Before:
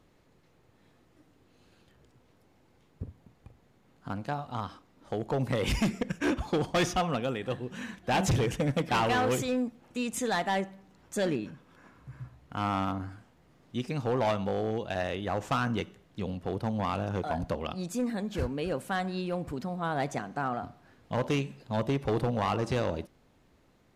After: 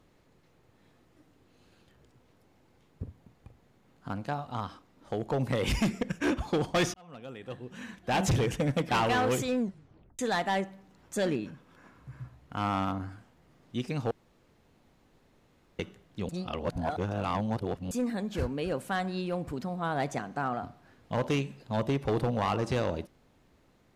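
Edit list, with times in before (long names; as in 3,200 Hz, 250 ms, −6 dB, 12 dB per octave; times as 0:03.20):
0:06.94–0:08.28: fade in
0:09.58: tape stop 0.61 s
0:14.11–0:15.79: fill with room tone
0:16.29–0:17.91: reverse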